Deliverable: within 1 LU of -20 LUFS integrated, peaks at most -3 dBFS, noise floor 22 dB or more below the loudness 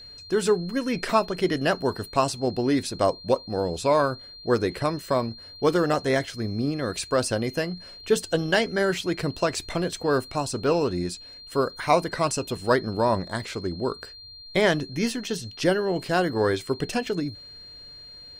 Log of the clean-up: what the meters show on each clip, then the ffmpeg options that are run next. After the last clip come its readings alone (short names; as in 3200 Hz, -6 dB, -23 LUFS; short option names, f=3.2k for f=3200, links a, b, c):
steady tone 4200 Hz; tone level -42 dBFS; loudness -25.5 LUFS; peak -7.0 dBFS; loudness target -20.0 LUFS
-> -af "bandreject=f=4.2k:w=30"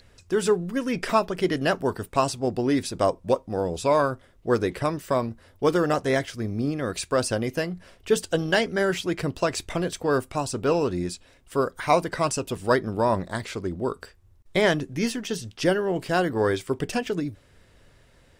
steady tone none; loudness -25.5 LUFS; peak -7.0 dBFS; loudness target -20.0 LUFS
-> -af "volume=5.5dB,alimiter=limit=-3dB:level=0:latency=1"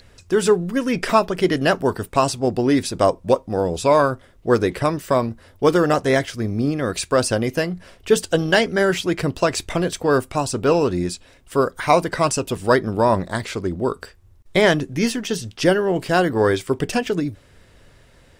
loudness -20.0 LUFS; peak -3.0 dBFS; noise floor -52 dBFS